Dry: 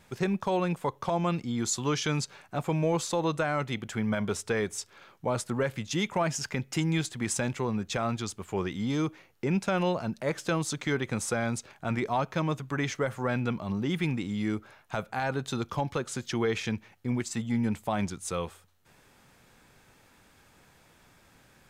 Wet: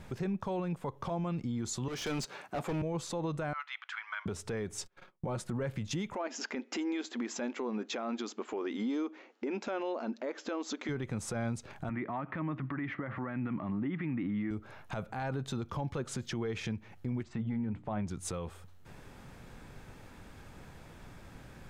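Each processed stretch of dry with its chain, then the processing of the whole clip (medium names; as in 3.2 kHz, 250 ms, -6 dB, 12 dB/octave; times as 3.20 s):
1.88–2.82 s: high-pass 280 Hz + overload inside the chain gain 33.5 dB
3.53–4.26 s: steep high-pass 1.1 kHz + distance through air 210 m
4.79–5.51 s: gate -52 dBFS, range -30 dB + comb 5.5 ms, depth 42%
6.15–10.89 s: brick-wall FIR band-pass 220–7700 Hz + distance through air 55 m
11.89–14.51 s: compression 2.5:1, threshold -35 dBFS + cabinet simulation 140–2800 Hz, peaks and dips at 290 Hz +8 dB, 450 Hz -8 dB, 1.2 kHz +6 dB, 1.9 kHz +9 dB
17.23–18.07 s: low-pass 2.4 kHz + hum notches 60/120/180/240/300/360 Hz
whole clip: tilt EQ -2 dB/octave; compression 6:1, threshold -35 dBFS; peak limiter -33 dBFS; trim +5.5 dB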